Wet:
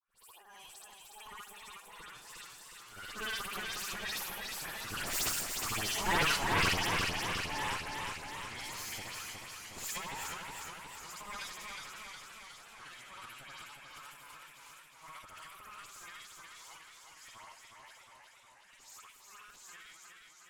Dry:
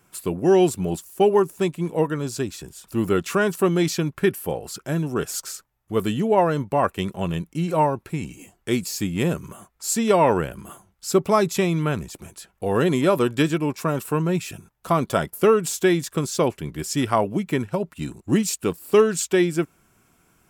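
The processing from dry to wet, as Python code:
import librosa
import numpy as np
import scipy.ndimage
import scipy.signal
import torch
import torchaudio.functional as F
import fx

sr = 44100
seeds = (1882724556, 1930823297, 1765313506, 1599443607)

y = fx.frame_reverse(x, sr, frame_ms=170.0)
y = fx.doppler_pass(y, sr, speed_mps=18, closest_m=15.0, pass_at_s=5.91)
y = scipy.signal.sosfilt(scipy.signal.butter(4, 1100.0, 'highpass', fs=sr, output='sos'), y)
y = fx.cheby_harmonics(y, sr, harmonics=(6,), levels_db=(-7,), full_scale_db=-18.5)
y = fx.dispersion(y, sr, late='highs', ms=102.0, hz=2600.0)
y = fx.transient(y, sr, attack_db=-4, sustain_db=11)
y = y + 10.0 ** (-15.0 / 20.0) * np.pad(y, (int(158 * sr / 1000.0), 0))[:len(y)]
y = fx.echo_warbled(y, sr, ms=362, feedback_pct=66, rate_hz=2.8, cents=61, wet_db=-4)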